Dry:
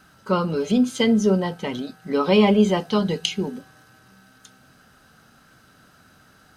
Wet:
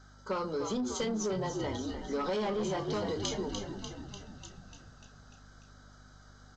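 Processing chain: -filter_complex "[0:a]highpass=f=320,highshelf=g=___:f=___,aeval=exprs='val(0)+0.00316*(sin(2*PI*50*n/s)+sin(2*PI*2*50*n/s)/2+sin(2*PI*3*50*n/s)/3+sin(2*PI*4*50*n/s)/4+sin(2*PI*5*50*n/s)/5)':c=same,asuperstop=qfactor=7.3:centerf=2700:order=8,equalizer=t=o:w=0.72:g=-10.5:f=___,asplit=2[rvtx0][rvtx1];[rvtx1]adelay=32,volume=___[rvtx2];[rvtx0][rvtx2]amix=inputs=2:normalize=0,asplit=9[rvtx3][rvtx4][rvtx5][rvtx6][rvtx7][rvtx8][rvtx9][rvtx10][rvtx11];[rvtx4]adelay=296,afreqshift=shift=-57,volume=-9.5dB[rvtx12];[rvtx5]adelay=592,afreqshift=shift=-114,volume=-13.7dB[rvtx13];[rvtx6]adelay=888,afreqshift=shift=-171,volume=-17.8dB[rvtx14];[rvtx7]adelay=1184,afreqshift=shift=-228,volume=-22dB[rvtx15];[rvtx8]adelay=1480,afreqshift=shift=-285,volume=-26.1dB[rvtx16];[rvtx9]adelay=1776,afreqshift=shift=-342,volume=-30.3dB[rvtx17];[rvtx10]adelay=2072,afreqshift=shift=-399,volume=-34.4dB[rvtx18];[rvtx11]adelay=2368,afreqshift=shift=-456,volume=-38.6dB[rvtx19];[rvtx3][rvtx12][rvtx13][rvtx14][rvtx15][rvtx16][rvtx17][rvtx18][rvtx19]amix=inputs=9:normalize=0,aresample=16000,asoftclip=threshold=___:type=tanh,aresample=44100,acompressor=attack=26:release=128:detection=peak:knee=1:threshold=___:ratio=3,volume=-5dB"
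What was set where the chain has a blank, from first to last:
7, 6100, 2500, -12dB, -19.5dB, -27dB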